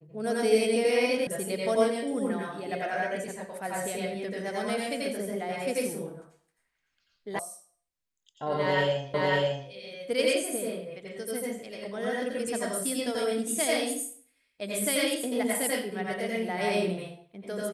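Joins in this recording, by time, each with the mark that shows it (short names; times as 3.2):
1.27 sound cut off
7.39 sound cut off
9.14 repeat of the last 0.55 s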